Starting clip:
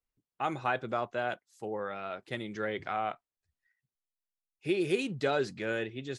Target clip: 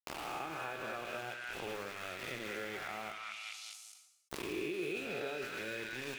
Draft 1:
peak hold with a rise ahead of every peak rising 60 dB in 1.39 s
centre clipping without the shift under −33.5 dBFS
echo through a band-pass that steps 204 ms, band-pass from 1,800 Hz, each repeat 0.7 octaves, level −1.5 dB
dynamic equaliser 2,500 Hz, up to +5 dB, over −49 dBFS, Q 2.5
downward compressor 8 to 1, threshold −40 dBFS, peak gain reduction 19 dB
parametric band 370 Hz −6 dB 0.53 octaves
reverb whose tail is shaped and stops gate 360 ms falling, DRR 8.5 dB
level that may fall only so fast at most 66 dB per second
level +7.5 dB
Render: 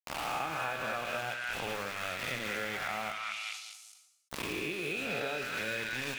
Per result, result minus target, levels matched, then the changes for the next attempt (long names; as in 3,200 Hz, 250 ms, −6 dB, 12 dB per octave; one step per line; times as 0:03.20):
downward compressor: peak gain reduction −7 dB; 500 Hz band −3.5 dB
change: downward compressor 8 to 1, threshold −48 dBFS, peak gain reduction 26 dB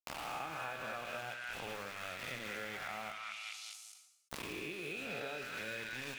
500 Hz band −3.5 dB
change: parametric band 370 Hz +4 dB 0.53 octaves